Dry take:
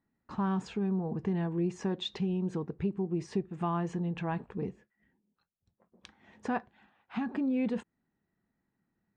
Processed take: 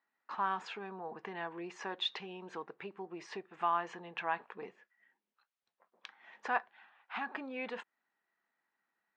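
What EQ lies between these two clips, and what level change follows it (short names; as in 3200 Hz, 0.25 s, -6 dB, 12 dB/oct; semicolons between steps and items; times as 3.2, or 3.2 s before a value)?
HPF 1000 Hz 12 dB/oct; Bessel low-pass 2800 Hz, order 2; +7.0 dB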